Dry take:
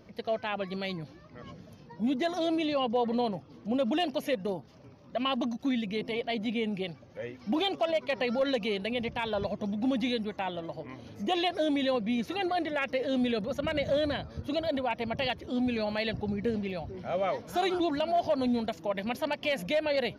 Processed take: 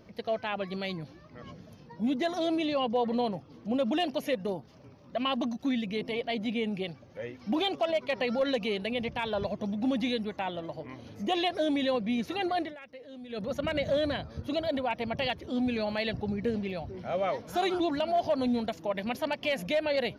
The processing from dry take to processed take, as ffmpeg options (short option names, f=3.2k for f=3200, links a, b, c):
-filter_complex "[0:a]asplit=3[a][b][c];[a]atrim=end=12.76,asetpts=PTS-STARTPTS,afade=t=out:st=12.6:d=0.16:silence=0.141254[d];[b]atrim=start=12.76:end=13.29,asetpts=PTS-STARTPTS,volume=-17dB[e];[c]atrim=start=13.29,asetpts=PTS-STARTPTS,afade=t=in:d=0.16:silence=0.141254[f];[d][e][f]concat=n=3:v=0:a=1"